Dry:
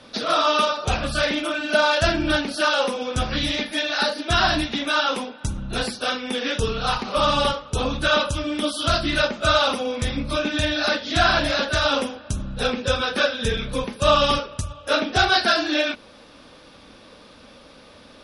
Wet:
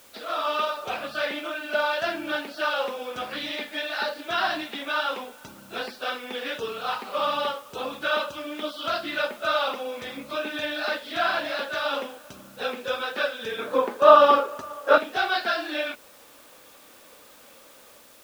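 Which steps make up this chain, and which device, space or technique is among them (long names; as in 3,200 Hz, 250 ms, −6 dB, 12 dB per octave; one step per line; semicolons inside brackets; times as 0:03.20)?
dictaphone (band-pass filter 380–3,300 Hz; automatic gain control gain up to 5 dB; tape wow and flutter 23 cents; white noise bed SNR 24 dB)
0:13.58–0:14.98: flat-topped bell 640 Hz +11 dB 3 octaves
level −9 dB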